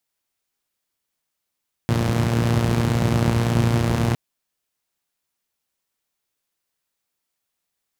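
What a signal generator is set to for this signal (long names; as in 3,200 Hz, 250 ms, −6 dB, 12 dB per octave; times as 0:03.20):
pulse-train model of a four-cylinder engine, steady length 2.26 s, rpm 3,500, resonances 95/140 Hz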